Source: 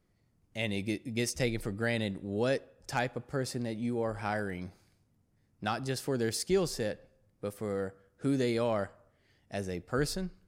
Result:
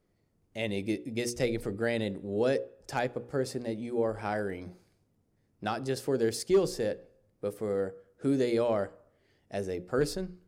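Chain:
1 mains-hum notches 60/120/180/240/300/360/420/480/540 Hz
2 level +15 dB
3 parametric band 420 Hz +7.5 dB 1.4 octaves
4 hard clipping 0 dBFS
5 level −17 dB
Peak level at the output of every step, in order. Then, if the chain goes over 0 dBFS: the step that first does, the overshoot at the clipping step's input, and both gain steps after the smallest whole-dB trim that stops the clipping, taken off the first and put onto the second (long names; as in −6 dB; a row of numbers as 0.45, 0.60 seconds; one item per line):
−16.0, −1.0, +4.0, 0.0, −17.0 dBFS
step 3, 4.0 dB
step 2 +11 dB, step 5 −13 dB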